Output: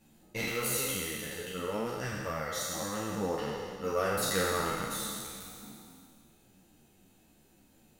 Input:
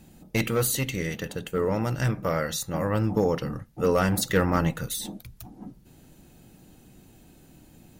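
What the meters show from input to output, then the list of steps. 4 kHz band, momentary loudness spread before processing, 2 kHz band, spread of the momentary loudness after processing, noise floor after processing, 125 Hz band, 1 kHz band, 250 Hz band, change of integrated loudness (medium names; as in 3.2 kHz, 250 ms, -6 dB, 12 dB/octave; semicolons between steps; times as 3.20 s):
-2.0 dB, 17 LU, -4.0 dB, 13 LU, -64 dBFS, -14.0 dB, -4.5 dB, -10.5 dB, -7.0 dB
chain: spectral sustain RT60 2.35 s; bass shelf 260 Hz -7 dB; three-phase chorus; trim -7 dB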